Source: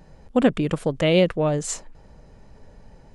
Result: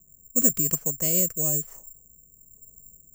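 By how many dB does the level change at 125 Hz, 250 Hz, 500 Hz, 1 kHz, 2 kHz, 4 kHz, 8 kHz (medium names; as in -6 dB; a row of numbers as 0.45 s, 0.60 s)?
-8.0 dB, -10.0 dB, -14.0 dB, -17.5 dB, -16.5 dB, -13.0 dB, +11.5 dB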